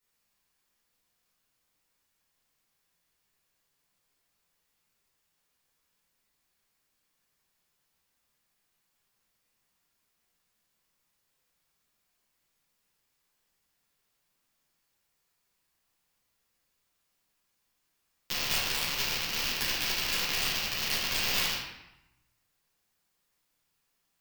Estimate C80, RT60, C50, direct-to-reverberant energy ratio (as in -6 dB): 3.5 dB, 0.90 s, 0.5 dB, -10.0 dB